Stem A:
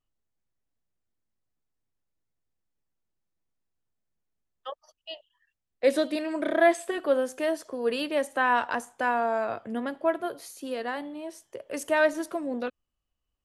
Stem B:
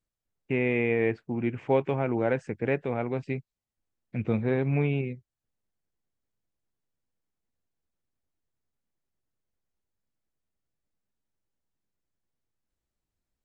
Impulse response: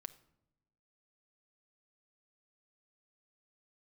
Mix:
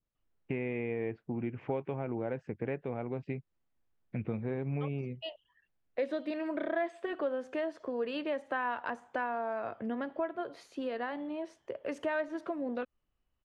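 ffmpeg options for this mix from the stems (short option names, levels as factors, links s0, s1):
-filter_complex "[0:a]adelay=150,volume=1.19[s0];[1:a]adynamicequalizer=threshold=0.00562:dfrequency=1800:dqfactor=1:tfrequency=1800:tqfactor=1:attack=5:release=100:ratio=0.375:range=3:mode=cutabove:tftype=bell,volume=1[s1];[s0][s1]amix=inputs=2:normalize=0,lowpass=2800,acompressor=threshold=0.02:ratio=3"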